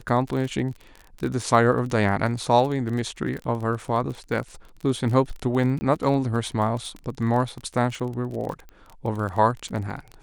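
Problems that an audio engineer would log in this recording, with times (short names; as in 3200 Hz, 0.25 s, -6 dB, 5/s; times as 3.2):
crackle 28/s -30 dBFS
5.79–5.81 gap 20 ms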